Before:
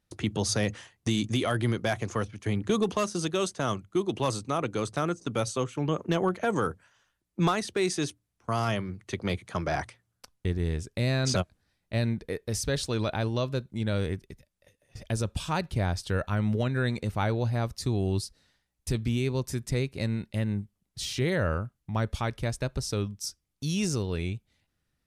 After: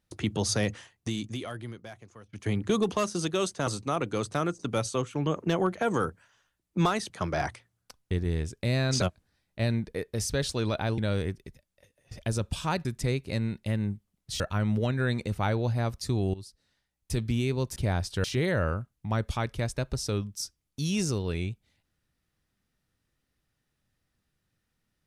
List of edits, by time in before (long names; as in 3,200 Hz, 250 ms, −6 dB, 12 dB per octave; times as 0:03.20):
0:00.64–0:02.33: fade out quadratic, to −21 dB
0:03.67–0:04.29: remove
0:07.72–0:09.44: remove
0:13.32–0:13.82: remove
0:15.69–0:16.17: swap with 0:19.53–0:21.08
0:18.11–0:18.99: fade in, from −17.5 dB